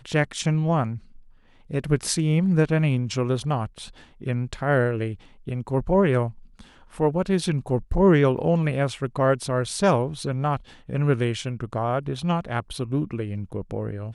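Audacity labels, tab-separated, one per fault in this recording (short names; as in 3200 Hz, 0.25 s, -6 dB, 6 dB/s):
8.370000	8.370000	gap 4.8 ms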